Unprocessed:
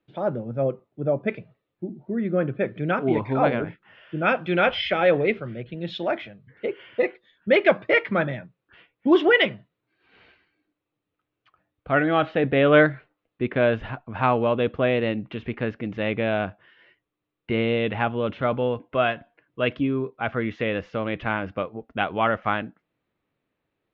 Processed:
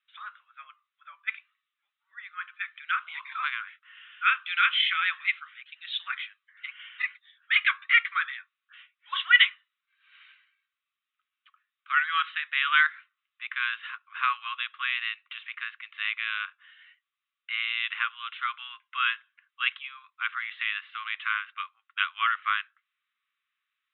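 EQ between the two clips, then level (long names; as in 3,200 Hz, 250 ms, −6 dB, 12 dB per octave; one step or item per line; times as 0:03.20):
Chebyshev band-pass filter 1,100–3,800 Hz, order 5
high-shelf EQ 2,700 Hz +10.5 dB
−1.5 dB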